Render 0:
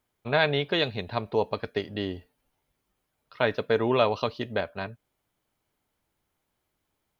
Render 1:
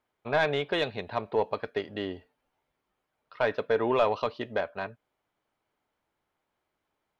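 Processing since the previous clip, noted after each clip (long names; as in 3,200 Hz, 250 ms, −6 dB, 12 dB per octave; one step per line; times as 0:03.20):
mid-hump overdrive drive 13 dB, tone 1,300 Hz, clips at −7.5 dBFS
level −3.5 dB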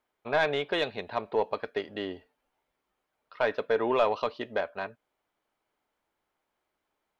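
parametric band 110 Hz −7 dB 1.5 octaves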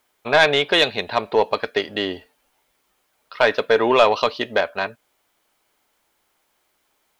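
high-shelf EQ 2,800 Hz +12 dB
level +9 dB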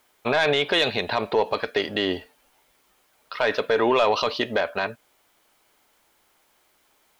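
brickwall limiter −15.5 dBFS, peak gain reduction 12 dB
level +4 dB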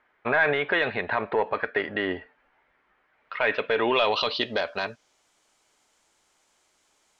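low-pass filter sweep 1,800 Hz → 7,300 Hz, 0:03.06–0:05.28
level −4 dB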